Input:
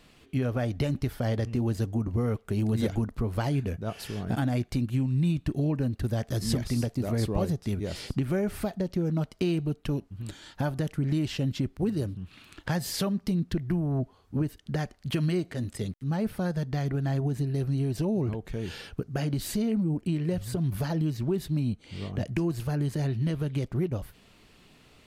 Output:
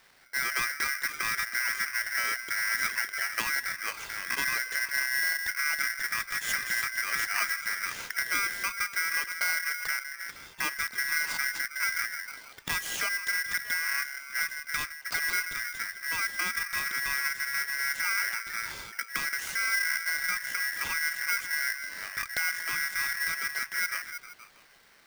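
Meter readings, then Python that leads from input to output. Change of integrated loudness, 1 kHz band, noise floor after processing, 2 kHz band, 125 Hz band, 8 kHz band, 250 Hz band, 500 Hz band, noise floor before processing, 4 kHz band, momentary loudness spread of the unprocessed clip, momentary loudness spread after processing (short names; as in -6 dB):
+0.5 dB, +5.0 dB, -53 dBFS, +18.5 dB, -30.0 dB, +11.0 dB, -26.0 dB, -18.5 dB, -59 dBFS, +7.5 dB, 6 LU, 6 LU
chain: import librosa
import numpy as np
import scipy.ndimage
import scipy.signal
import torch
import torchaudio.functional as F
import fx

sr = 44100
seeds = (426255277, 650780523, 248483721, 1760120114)

p1 = fx.env_lowpass(x, sr, base_hz=2600.0, full_db=-24.0)
p2 = fx.low_shelf(p1, sr, hz=180.0, db=-7.5)
p3 = p2 + fx.echo_stepped(p2, sr, ms=157, hz=220.0, octaves=0.7, feedback_pct=70, wet_db=-5.5, dry=0)
y = p3 * np.sign(np.sin(2.0 * np.pi * 1800.0 * np.arange(len(p3)) / sr))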